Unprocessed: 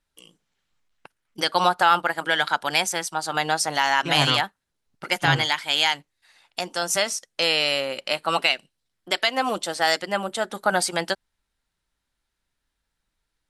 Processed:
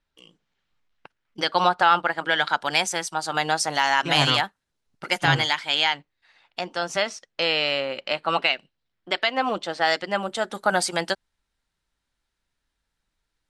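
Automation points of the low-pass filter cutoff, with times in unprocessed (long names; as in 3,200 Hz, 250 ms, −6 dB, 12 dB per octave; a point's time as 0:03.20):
0:02.23 4,700 Hz
0:02.93 9,200 Hz
0:05.44 9,200 Hz
0:05.93 3,700 Hz
0:09.78 3,700 Hz
0:10.56 9,500 Hz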